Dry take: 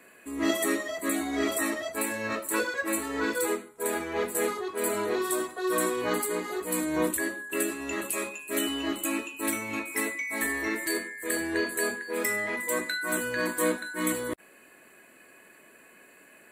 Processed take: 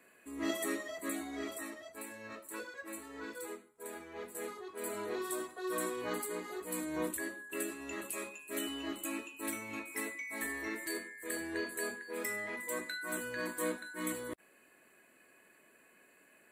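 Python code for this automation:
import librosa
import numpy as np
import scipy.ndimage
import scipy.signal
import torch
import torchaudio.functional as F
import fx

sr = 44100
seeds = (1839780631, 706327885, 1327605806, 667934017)

y = fx.gain(x, sr, db=fx.line((1.05, -9.0), (1.74, -16.0), (4.15, -16.0), (5.19, -9.5)))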